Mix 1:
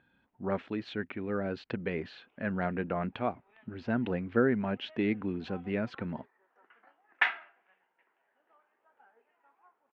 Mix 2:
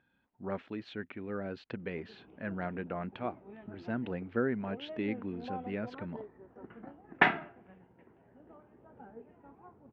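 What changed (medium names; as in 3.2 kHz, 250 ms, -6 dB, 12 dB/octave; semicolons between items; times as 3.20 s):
speech -5.0 dB; background: remove high-pass 1.3 kHz 12 dB/octave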